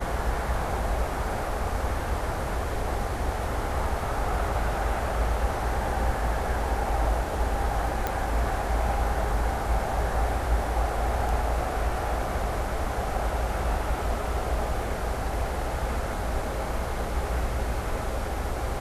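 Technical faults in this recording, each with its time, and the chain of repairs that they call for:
0:08.07: click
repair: click removal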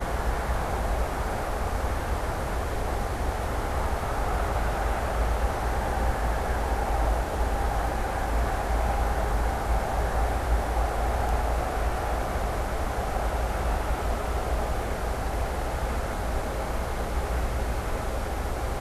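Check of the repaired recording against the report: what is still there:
none of them is left

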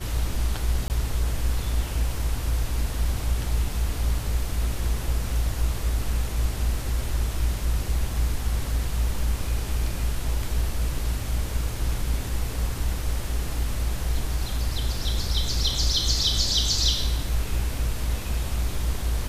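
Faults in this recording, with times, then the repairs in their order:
0:00.88–0:00.90: drop-out 19 ms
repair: repair the gap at 0:00.88, 19 ms

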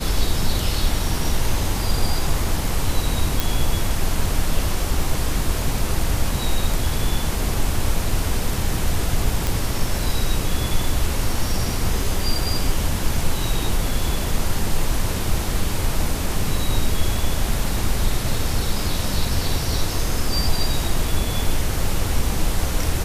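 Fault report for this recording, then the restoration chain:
0:03.40: click
0:09.47: click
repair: click removal

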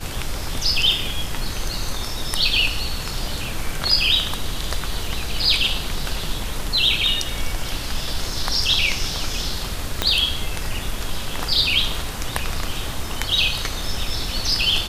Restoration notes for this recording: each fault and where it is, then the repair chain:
0:10.02: click −3 dBFS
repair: click removal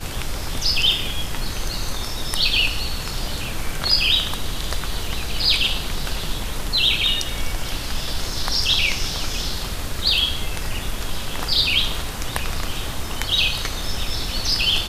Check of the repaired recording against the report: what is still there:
0:10.02: click

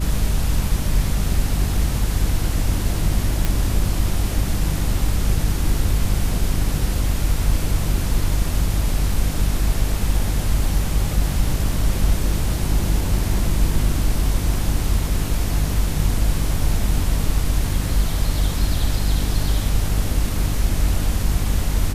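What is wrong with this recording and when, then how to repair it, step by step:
mains hum 50 Hz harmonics 6 −23 dBFS
0:03.45: click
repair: click removal
hum removal 50 Hz, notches 6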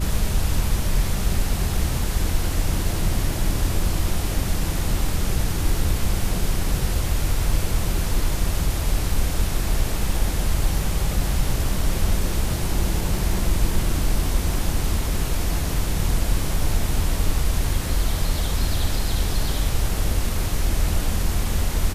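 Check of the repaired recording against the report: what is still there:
none of them is left

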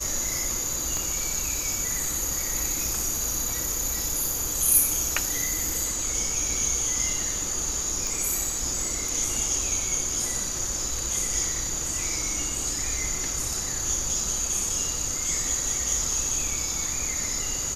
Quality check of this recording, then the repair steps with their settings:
0:00.97: click
0:08.07: click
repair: click removal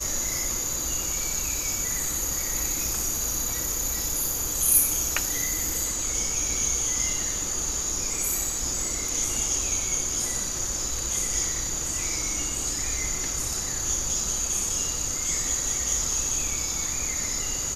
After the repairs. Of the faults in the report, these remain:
0:00.97: click

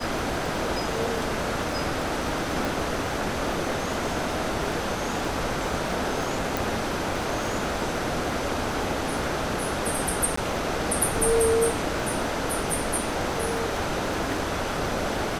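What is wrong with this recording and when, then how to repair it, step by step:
surface crackle 48 per second −32 dBFS
0:02.65: click
0:06.57: click
0:10.36–0:10.37: drop-out 14 ms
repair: click removal
repair the gap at 0:10.36, 14 ms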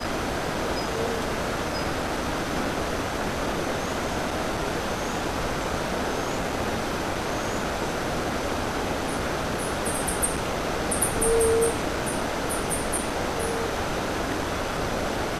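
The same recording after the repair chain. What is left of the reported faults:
none of them is left

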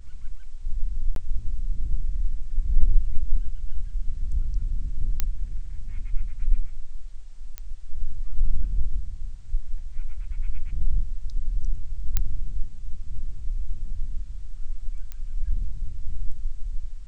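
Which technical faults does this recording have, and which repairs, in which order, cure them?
0:01.15–0:01.16: drop-out 12 ms
0:05.20: click −9 dBFS
0:07.58: click −17 dBFS
0:12.17: click −7 dBFS
0:15.12: click −22 dBFS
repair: click removal
repair the gap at 0:01.15, 12 ms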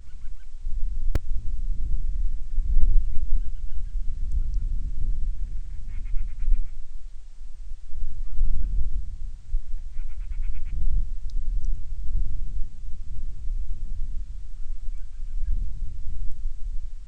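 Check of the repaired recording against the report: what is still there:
0:15.12: click

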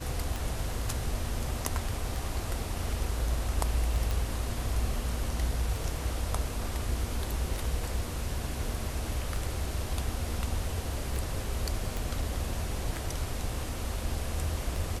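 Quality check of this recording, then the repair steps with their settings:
scratch tick 33 1/3 rpm
0:04.11: click
0:11.97: click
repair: click removal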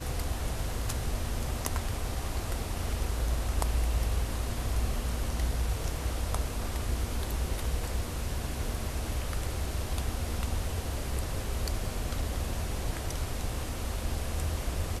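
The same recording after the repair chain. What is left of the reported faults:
none of them is left

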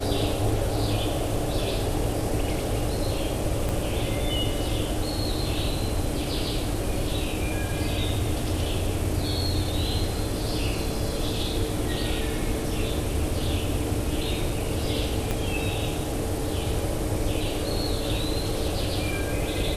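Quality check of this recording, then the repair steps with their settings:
0:03.69: click
0:15.31: click −13 dBFS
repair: click removal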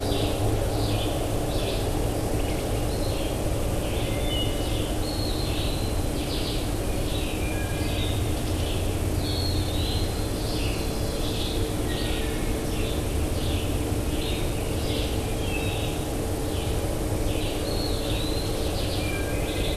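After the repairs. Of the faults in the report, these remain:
0:03.69: click
0:15.31: click

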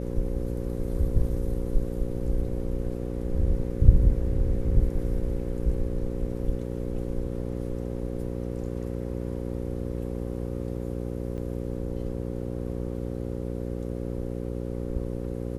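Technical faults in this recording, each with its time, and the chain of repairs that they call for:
mains buzz 60 Hz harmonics 9 −32 dBFS
0:11.37–0:11.38: drop-out 8.9 ms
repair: hum removal 60 Hz, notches 9
repair the gap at 0:11.37, 8.9 ms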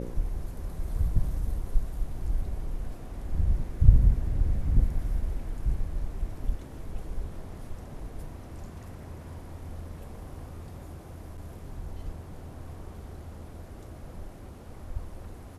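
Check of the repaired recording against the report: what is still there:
none of them is left

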